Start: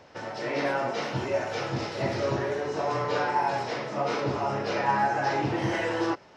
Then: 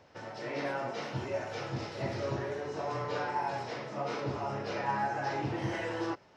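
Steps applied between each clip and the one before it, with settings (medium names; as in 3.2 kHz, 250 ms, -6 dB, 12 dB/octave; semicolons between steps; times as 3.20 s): peaking EQ 90 Hz +4 dB 1.6 oct; trim -7.5 dB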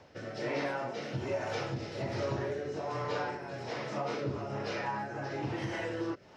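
compression, threshold -36 dBFS, peak gain reduction 9 dB; rotary cabinet horn 1.2 Hz; trim +6.5 dB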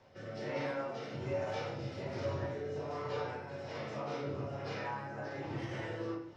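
reverberation RT60 0.60 s, pre-delay 5 ms, DRR -2.5 dB; trim -9 dB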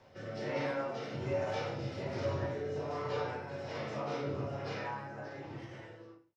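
fade out at the end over 1.87 s; trim +2 dB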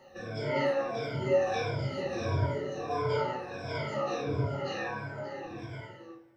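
drifting ripple filter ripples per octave 1.7, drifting -1.5 Hz, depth 23 dB; plate-style reverb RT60 2.8 s, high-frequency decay 0.75×, DRR 18.5 dB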